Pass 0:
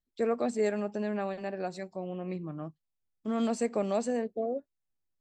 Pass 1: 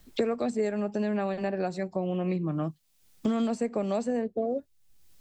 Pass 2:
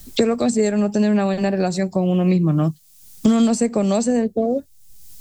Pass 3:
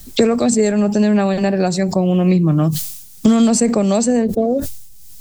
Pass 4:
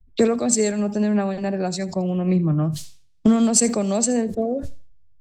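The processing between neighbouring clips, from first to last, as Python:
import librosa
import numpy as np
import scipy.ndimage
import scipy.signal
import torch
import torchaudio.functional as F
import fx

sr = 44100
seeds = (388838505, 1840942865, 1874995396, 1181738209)

y1 = fx.low_shelf(x, sr, hz=210.0, db=6.5)
y1 = fx.band_squash(y1, sr, depth_pct=100)
y2 = fx.bass_treble(y1, sr, bass_db=7, treble_db=13)
y2 = F.gain(torch.from_numpy(y2), 8.0).numpy()
y3 = fx.sustainer(y2, sr, db_per_s=65.0)
y3 = F.gain(torch.from_numpy(y3), 3.0).numpy()
y4 = fx.echo_thinned(y3, sr, ms=82, feedback_pct=28, hz=170.0, wet_db=-17.5)
y4 = fx.env_lowpass(y4, sr, base_hz=2100.0, full_db=-11.0)
y4 = fx.band_widen(y4, sr, depth_pct=100)
y4 = F.gain(torch.from_numpy(y4), -6.0).numpy()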